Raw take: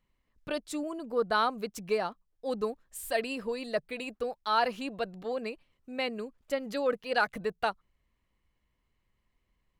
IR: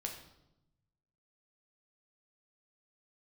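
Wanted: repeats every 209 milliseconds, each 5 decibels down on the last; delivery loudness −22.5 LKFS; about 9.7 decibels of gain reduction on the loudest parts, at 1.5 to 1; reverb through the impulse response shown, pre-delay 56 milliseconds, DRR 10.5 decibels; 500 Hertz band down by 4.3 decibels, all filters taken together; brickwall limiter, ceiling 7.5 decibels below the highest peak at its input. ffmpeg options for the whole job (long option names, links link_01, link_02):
-filter_complex "[0:a]equalizer=frequency=500:width_type=o:gain=-5,acompressor=threshold=-51dB:ratio=1.5,alimiter=level_in=8dB:limit=-24dB:level=0:latency=1,volume=-8dB,aecho=1:1:209|418|627|836|1045|1254|1463:0.562|0.315|0.176|0.0988|0.0553|0.031|0.0173,asplit=2[link_01][link_02];[1:a]atrim=start_sample=2205,adelay=56[link_03];[link_02][link_03]afir=irnorm=-1:irlink=0,volume=-10dB[link_04];[link_01][link_04]amix=inputs=2:normalize=0,volume=20dB"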